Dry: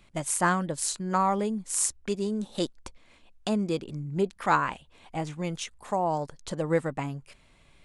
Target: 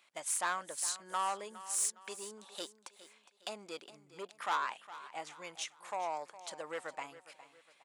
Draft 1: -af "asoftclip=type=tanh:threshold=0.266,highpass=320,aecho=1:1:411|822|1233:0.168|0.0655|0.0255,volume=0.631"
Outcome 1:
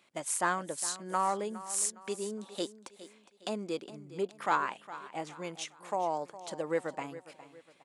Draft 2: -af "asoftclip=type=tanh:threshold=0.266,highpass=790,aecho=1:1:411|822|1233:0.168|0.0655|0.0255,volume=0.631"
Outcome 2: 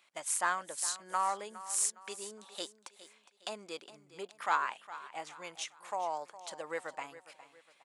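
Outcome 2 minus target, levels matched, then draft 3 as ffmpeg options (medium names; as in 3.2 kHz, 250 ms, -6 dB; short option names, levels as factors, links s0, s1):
saturation: distortion -12 dB
-af "asoftclip=type=tanh:threshold=0.0891,highpass=790,aecho=1:1:411|822|1233:0.168|0.0655|0.0255,volume=0.631"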